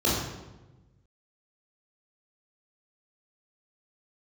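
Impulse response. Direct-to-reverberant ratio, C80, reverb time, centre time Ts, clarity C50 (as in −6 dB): −6.5 dB, 3.5 dB, 1.1 s, 72 ms, 0.5 dB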